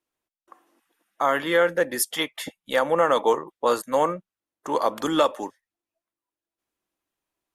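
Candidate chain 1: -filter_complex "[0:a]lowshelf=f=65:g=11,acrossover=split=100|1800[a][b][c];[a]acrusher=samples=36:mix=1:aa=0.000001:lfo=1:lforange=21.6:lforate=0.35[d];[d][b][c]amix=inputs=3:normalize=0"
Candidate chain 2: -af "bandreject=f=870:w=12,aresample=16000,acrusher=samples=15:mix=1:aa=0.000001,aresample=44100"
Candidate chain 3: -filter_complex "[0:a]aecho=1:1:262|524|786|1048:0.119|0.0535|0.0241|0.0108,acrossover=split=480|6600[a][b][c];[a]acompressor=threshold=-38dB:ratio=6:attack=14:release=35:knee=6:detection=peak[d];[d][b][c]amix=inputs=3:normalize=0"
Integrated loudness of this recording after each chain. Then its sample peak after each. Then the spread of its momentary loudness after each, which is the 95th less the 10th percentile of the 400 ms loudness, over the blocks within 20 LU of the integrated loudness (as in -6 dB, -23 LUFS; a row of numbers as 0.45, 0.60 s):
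-23.5, -24.5, -25.0 LUFS; -7.0, -7.5, -9.0 dBFS; 13, 14, 14 LU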